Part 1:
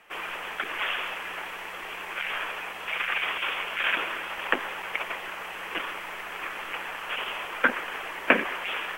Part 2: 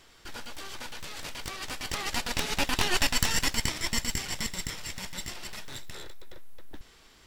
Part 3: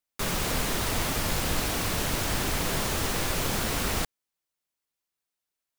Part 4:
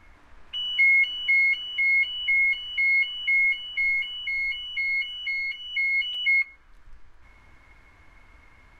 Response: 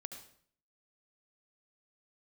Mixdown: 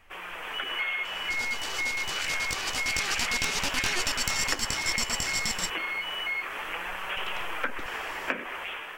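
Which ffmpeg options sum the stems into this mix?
-filter_complex "[0:a]volume=-0.5dB[a];[1:a]equalizer=f=6.2k:w=1:g=8.5,acompressor=threshold=-27dB:ratio=4,adelay=1050,volume=-5dB,asplit=3[b][c][d];[b]atrim=end=5.7,asetpts=PTS-STARTPTS,afade=t=out:st=5.696:d=0.004:c=hsin[e];[c]atrim=start=5.7:end=7.17,asetpts=PTS-STARTPTS,volume=0[f];[d]atrim=start=7.17,asetpts=PTS-STARTPTS,afade=t=in:d=0.004:c=hsin[g];[e][f][g]concat=n=3:v=0:a=1[h];[3:a]tiltshelf=f=700:g=8,crystalizer=i=10:c=0,volume=-11.5dB[i];[a][i]amix=inputs=2:normalize=0,flanger=delay=5.2:depth=8.2:regen=65:speed=0.28:shape=sinusoidal,acompressor=threshold=-35dB:ratio=4,volume=0dB[j];[h][j]amix=inputs=2:normalize=0,dynaudnorm=f=100:g=9:m=6dB"

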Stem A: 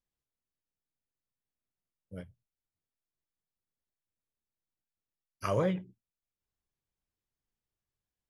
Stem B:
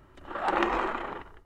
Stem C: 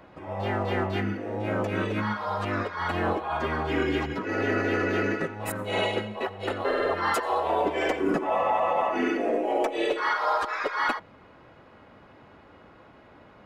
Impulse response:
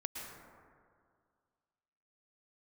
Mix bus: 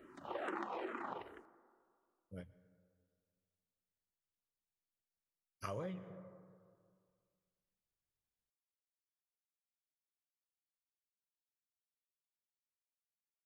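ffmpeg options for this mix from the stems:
-filter_complex "[0:a]acontrast=50,adelay=200,volume=-13dB,asplit=2[a][b];[b]volume=-13.5dB[c];[1:a]highpass=260,lowshelf=f=450:g=9.5,asplit=2[d][e];[e]afreqshift=-2.3[f];[d][f]amix=inputs=2:normalize=1,volume=-2dB,asplit=2[g][h];[h]volume=-23dB[i];[3:a]atrim=start_sample=2205[j];[c][i]amix=inputs=2:normalize=0[k];[k][j]afir=irnorm=-1:irlink=0[l];[a][g][l]amix=inputs=3:normalize=0,acompressor=threshold=-39dB:ratio=10"

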